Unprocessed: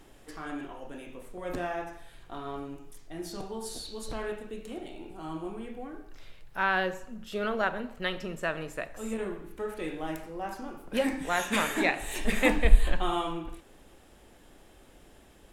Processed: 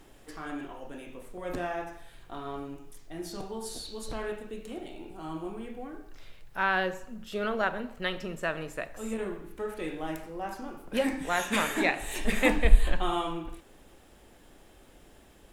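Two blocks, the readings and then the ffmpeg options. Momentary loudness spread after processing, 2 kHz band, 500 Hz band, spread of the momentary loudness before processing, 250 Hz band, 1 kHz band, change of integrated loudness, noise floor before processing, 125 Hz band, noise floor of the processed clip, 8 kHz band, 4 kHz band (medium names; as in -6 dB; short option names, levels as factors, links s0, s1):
17 LU, 0.0 dB, 0.0 dB, 17 LU, 0.0 dB, 0.0 dB, 0.0 dB, -56 dBFS, 0.0 dB, -56 dBFS, 0.0 dB, 0.0 dB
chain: -af "acrusher=bits=11:mix=0:aa=0.000001"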